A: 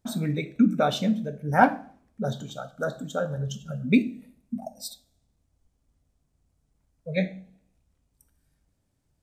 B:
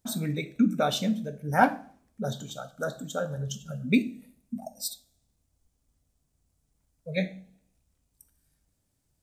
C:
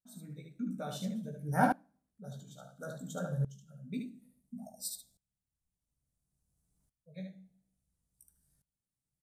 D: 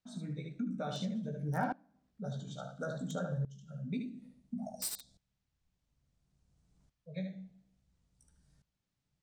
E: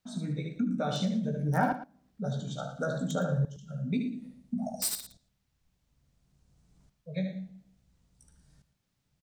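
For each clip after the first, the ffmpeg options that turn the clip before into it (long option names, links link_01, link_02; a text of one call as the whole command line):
ffmpeg -i in.wav -af "highshelf=frequency=4500:gain=10,volume=-3dB" out.wav
ffmpeg -i in.wav -af "equalizer=frequency=160:width_type=o:width=0.67:gain=9,equalizer=frequency=2500:width_type=o:width=0.67:gain=-6,equalizer=frequency=10000:width_type=o:width=0.67:gain=8,aecho=1:1:16|74:0.596|0.596,aeval=exprs='val(0)*pow(10,-19*if(lt(mod(-0.58*n/s,1),2*abs(-0.58)/1000),1-mod(-0.58*n/s,1)/(2*abs(-0.58)/1000),(mod(-0.58*n/s,1)-2*abs(-0.58)/1000)/(1-2*abs(-0.58)/1000))/20)':channel_layout=same,volume=-8dB" out.wav
ffmpeg -i in.wav -filter_complex "[0:a]acrossover=split=320|1400|6600[link_01][link_02][link_03][link_04];[link_04]acrusher=bits=6:mix=0:aa=0.000001[link_05];[link_01][link_02][link_03][link_05]amix=inputs=4:normalize=0,acompressor=threshold=-45dB:ratio=3,volume=8.5dB" out.wav
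ffmpeg -i in.wav -af "aecho=1:1:114:0.2,volume=7dB" out.wav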